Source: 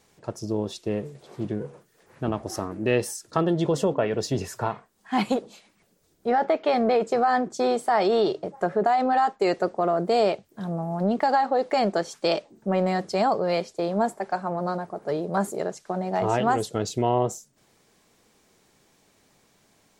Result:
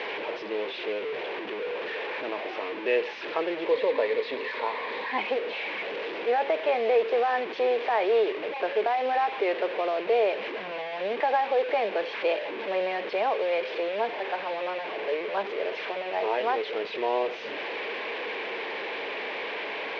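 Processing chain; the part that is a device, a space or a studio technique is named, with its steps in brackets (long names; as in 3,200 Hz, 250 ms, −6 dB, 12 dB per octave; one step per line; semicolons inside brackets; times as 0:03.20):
digital answering machine (band-pass filter 370–3,100 Hz; linear delta modulator 32 kbit/s, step −25.5 dBFS; loudspeaker in its box 430–3,100 Hz, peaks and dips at 460 Hz +5 dB, 720 Hz −5 dB, 1,300 Hz −9 dB, 2,400 Hz +4 dB)
0:03.71–0:05.18: EQ curve with evenly spaced ripples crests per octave 1, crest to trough 7 dB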